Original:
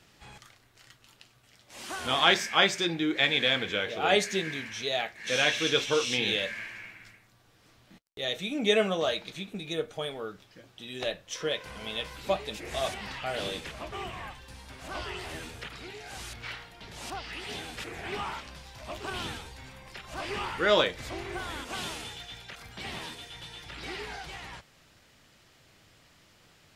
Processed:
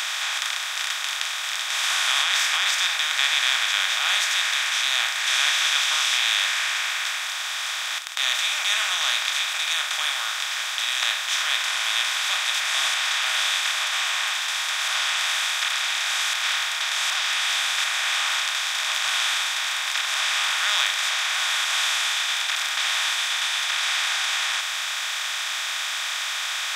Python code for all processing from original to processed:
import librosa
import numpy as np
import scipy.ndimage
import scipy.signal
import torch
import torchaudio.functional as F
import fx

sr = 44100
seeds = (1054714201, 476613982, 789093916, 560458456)

y = fx.chain(x, sr, fx.highpass(hz=520.0, slope=12),
    fx.over_compress(threshold_db=-28.0, ratio=-1.0), at=(1.83, 2.71))
y = fx.bin_compress(y, sr, power=0.2)
y = scipy.signal.sosfilt(scipy.signal.cheby2(4, 50, 370.0, 'highpass', fs=sr, output='sos'), y)
y = fx.tilt_eq(y, sr, slope=2.5)
y = F.gain(torch.from_numpy(y), -5.5).numpy()